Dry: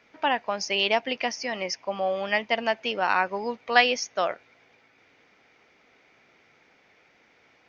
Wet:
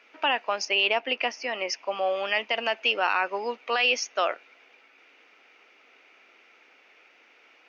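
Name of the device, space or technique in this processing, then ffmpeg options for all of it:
laptop speaker: -filter_complex "[0:a]asettb=1/sr,asplit=3[link_01][link_02][link_03];[link_01]atrim=end=0.654[link_04];[link_02]atrim=start=0.65:end=1.68,asetpts=PTS-STARTPTS,afade=type=in:duration=0.004:curve=qsin,afade=type=out:start_time=1.026:duration=0.004:curve=qsin,highshelf=frequency=3800:gain=-10.5[link_05];[link_03]atrim=start=1.676[link_06];[link_04][link_05]acrossfade=duration=0.004:curve1=hsin:curve2=qsin[link_07];[link_07][link_06]acrossfade=duration=0.004:curve1=qsin:curve2=hsin,highpass=frequency=280:width=0.5412,highpass=frequency=280:width=1.3066,equalizer=frequency=1300:width_type=o:width=0.42:gain=4.5,equalizer=frequency=2700:width_type=o:width=0.37:gain=10,alimiter=limit=-13.5dB:level=0:latency=1:release=31"

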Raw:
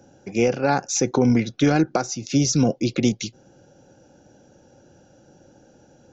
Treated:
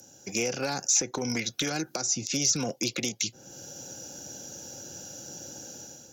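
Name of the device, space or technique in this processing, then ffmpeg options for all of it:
FM broadcast chain: -filter_complex "[0:a]highpass=frequency=65:width=0.5412,highpass=frequency=65:width=1.3066,dynaudnorm=framelen=120:gausssize=7:maxgain=11dB,acrossover=split=500|2600[link_01][link_02][link_03];[link_01]acompressor=threshold=-24dB:ratio=4[link_04];[link_02]acompressor=threshold=-25dB:ratio=4[link_05];[link_03]acompressor=threshold=-40dB:ratio=4[link_06];[link_04][link_05][link_06]amix=inputs=3:normalize=0,aemphasis=mode=production:type=75fm,alimiter=limit=-15dB:level=0:latency=1:release=247,asoftclip=type=hard:threshold=-17dB,lowpass=frequency=15000:width=0.5412,lowpass=frequency=15000:width=1.3066,aemphasis=mode=production:type=75fm,volume=-5.5dB"

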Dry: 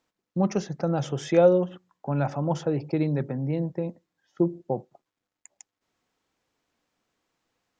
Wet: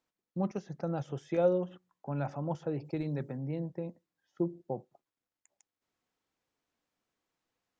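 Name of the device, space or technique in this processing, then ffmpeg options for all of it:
de-esser from a sidechain: -filter_complex "[0:a]asettb=1/sr,asplit=3[link_01][link_02][link_03];[link_01]atrim=end=2.854[link_04];[link_02]atrim=start=2.85:end=3.37,asetpts=PTS-STARTPTS,afade=type=in:duration=0.004:curve=qsin,afade=type=out:start_time=0.516:duration=0.004:curve=qsin,highshelf=frequency=5500:gain=11.5[link_05];[link_03]atrim=start=3.366[link_06];[link_04][link_05]acrossfade=duration=0.004:curve1=hsin:curve2=qsin[link_07];[link_07][link_06]acrossfade=duration=0.004:curve1=qsin:curve2=hsin,asplit=2[link_08][link_09];[link_09]highpass=frequency=4000:width=0.5412,highpass=frequency=4000:width=1.3066,apad=whole_len=343951[link_10];[link_08][link_10]sidechaincompress=threshold=-52dB:ratio=8:attack=4.1:release=32,volume=-8.5dB"

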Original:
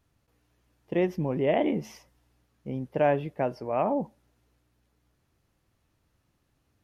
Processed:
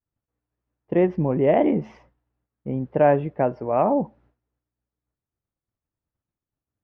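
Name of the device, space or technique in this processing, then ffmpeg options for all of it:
hearing-loss simulation: -af "lowpass=1700,agate=range=-33dB:threshold=-57dB:ratio=3:detection=peak,volume=6.5dB"

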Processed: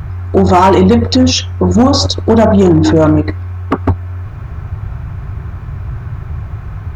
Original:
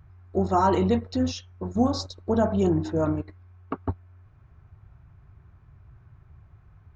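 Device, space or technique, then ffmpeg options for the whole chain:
loud club master: -af "acompressor=threshold=-28dB:ratio=1.5,asoftclip=type=hard:threshold=-20.5dB,alimiter=level_in=30dB:limit=-1dB:release=50:level=0:latency=1,volume=-1dB"

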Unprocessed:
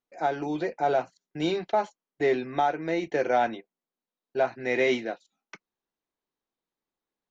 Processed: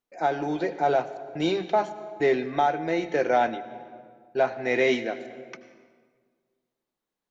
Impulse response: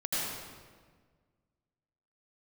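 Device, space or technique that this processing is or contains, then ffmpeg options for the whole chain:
compressed reverb return: -filter_complex "[0:a]asplit=2[link_01][link_02];[1:a]atrim=start_sample=2205[link_03];[link_02][link_03]afir=irnorm=-1:irlink=0,acompressor=threshold=-18dB:ratio=5,volume=-16.5dB[link_04];[link_01][link_04]amix=inputs=2:normalize=0,volume=1dB"

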